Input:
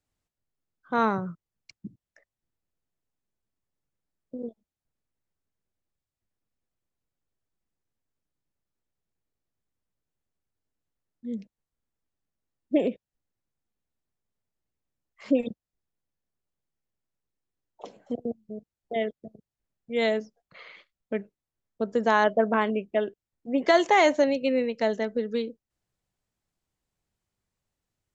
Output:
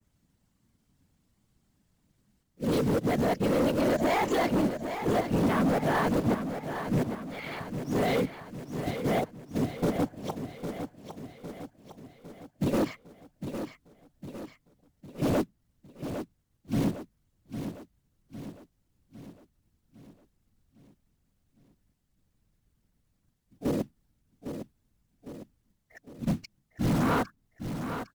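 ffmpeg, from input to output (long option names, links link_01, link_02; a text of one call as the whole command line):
ffmpeg -i in.wav -filter_complex "[0:a]areverse,equalizer=frequency=180:width=6.6:gain=14.5,bandreject=frequency=2400:width=21,acrossover=split=210|950[link_01][link_02][link_03];[link_01]acontrast=53[link_04];[link_04][link_02][link_03]amix=inputs=3:normalize=0,alimiter=limit=-19.5dB:level=0:latency=1:release=46,asplit=2[link_05][link_06];[link_06]acompressor=threshold=-34dB:ratio=16,volume=-3dB[link_07];[link_05][link_07]amix=inputs=2:normalize=0,acrusher=bits=4:mode=log:mix=0:aa=0.000001,asetrate=45392,aresample=44100,atempo=0.971532,afftfilt=real='hypot(re,im)*cos(2*PI*random(0))':imag='hypot(re,im)*sin(2*PI*random(1))':win_size=512:overlap=0.75,volume=31.5dB,asoftclip=hard,volume=-31.5dB,aecho=1:1:806|1612|2418|3224|4030|4836:0.355|0.185|0.0959|0.0499|0.0259|0.0135,adynamicequalizer=threshold=0.00178:dfrequency=2000:dqfactor=0.7:tfrequency=2000:tqfactor=0.7:attack=5:release=100:ratio=0.375:range=2:mode=cutabove:tftype=highshelf,volume=9dB" out.wav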